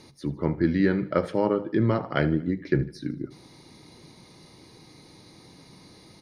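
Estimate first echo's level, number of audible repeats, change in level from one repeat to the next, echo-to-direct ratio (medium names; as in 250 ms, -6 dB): -18.0 dB, 3, -6.0 dB, -17.0 dB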